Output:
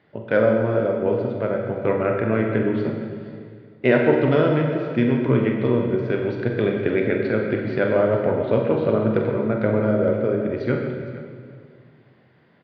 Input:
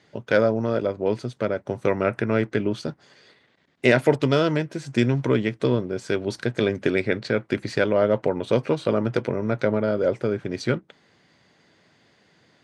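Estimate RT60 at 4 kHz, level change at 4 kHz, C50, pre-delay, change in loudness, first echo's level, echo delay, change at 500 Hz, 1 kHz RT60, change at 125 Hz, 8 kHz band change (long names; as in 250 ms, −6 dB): 1.6 s, −6.5 dB, 3.0 dB, 31 ms, +2.5 dB, −9.5 dB, 46 ms, +2.5 dB, 1.9 s, +3.0 dB, below −25 dB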